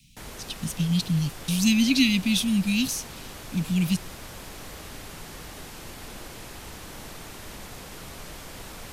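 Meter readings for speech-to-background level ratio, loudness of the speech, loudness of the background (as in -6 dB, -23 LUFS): 16.0 dB, -24.5 LUFS, -40.5 LUFS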